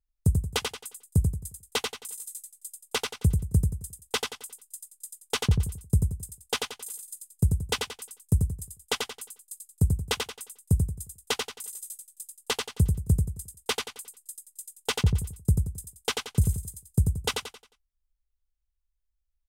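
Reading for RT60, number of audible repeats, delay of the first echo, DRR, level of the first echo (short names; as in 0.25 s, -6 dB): none, 4, 89 ms, none, -4.0 dB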